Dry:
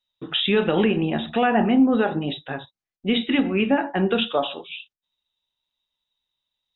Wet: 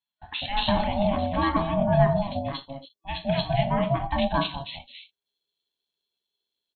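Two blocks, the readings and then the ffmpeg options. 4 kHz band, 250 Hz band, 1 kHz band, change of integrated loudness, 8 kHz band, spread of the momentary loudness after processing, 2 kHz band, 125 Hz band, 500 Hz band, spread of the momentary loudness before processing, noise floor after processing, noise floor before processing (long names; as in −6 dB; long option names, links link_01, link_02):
−5.5 dB, −7.5 dB, +0.5 dB, −4.0 dB, can't be measured, 15 LU, −6.5 dB, +4.0 dB, −3.0 dB, 15 LU, below −85 dBFS, below −85 dBFS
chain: -filter_complex "[0:a]superequalizer=9b=0.282:11b=0.316:12b=0.631,acrossover=split=390|3000[link_01][link_02][link_03];[link_01]adelay=200[link_04];[link_03]adelay=230[link_05];[link_04][link_02][link_05]amix=inputs=3:normalize=0,aeval=exprs='val(0)*sin(2*PI*410*n/s)':channel_layout=same,volume=1.5dB"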